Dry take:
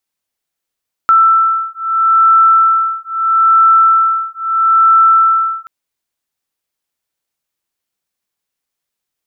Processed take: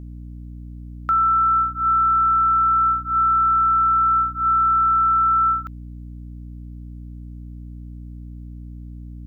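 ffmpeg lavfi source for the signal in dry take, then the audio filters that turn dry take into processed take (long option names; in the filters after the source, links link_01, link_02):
-f lavfi -i "aevalsrc='0.299*(sin(2*PI*1330*t)+sin(2*PI*1330.77*t))':duration=4.58:sample_rate=44100"
-af "alimiter=limit=-14dB:level=0:latency=1,aeval=exprs='val(0)+0.02*(sin(2*PI*60*n/s)+sin(2*PI*2*60*n/s)/2+sin(2*PI*3*60*n/s)/3+sin(2*PI*4*60*n/s)/4+sin(2*PI*5*60*n/s)/5)':channel_layout=same"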